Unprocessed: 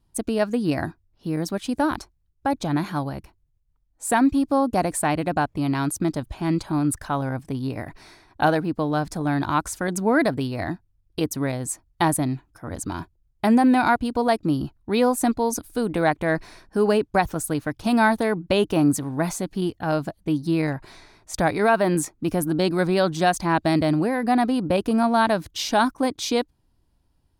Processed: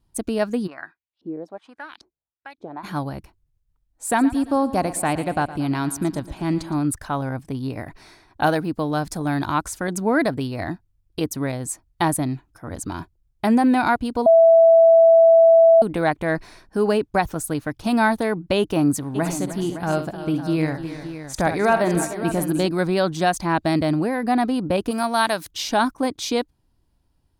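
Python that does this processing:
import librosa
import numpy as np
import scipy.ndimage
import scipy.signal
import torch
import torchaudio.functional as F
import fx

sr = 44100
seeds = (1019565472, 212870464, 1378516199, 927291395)

y = fx.filter_lfo_bandpass(x, sr, shape='saw_up', hz=fx.line((0.66, 0.77), (2.83, 2.3)), low_hz=280.0, high_hz=3900.0, q=3.0, at=(0.66, 2.83), fade=0.02)
y = fx.echo_feedback(y, sr, ms=114, feedback_pct=53, wet_db=-15.5, at=(4.07, 6.76))
y = fx.high_shelf(y, sr, hz=5300.0, db=7.0, at=(8.44, 9.52))
y = fx.echo_multitap(y, sr, ms=(63, 303, 381, 563), db=(-9.5, -12.5, -19.0, -11.5), at=(19.14, 22.66), fade=0.02)
y = fx.tilt_eq(y, sr, slope=3.0, at=(24.9, 25.48), fade=0.02)
y = fx.edit(y, sr, fx.bleep(start_s=14.26, length_s=1.56, hz=660.0, db=-8.5), tone=tone)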